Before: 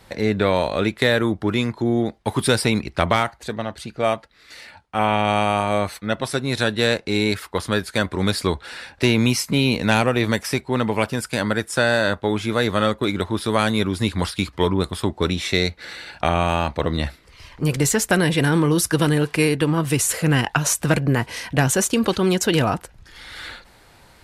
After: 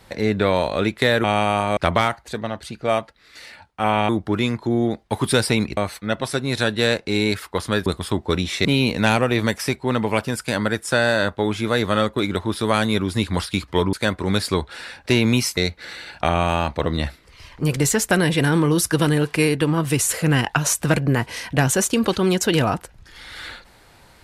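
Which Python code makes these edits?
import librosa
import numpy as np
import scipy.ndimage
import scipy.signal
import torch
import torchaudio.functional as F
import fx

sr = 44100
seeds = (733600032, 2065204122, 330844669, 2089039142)

y = fx.edit(x, sr, fx.swap(start_s=1.24, length_s=1.68, other_s=5.24, other_length_s=0.53),
    fx.swap(start_s=7.86, length_s=1.64, other_s=14.78, other_length_s=0.79), tone=tone)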